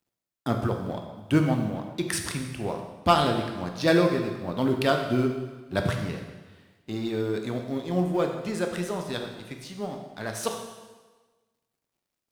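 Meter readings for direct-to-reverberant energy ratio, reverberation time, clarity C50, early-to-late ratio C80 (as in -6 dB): 3.0 dB, 1.3 s, 5.5 dB, 7.5 dB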